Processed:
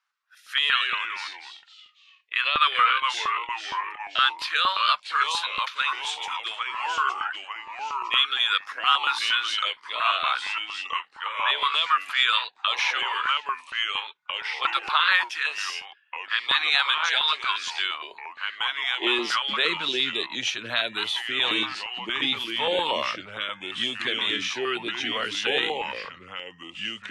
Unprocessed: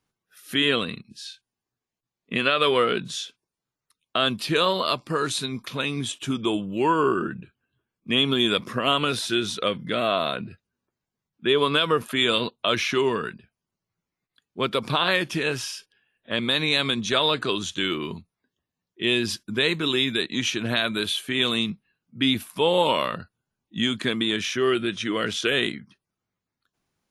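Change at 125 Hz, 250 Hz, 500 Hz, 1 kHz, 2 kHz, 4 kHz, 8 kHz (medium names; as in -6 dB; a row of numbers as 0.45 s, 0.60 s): under -15 dB, -13.0 dB, -10.5 dB, +3.0 dB, +3.0 dB, +1.5 dB, -4.0 dB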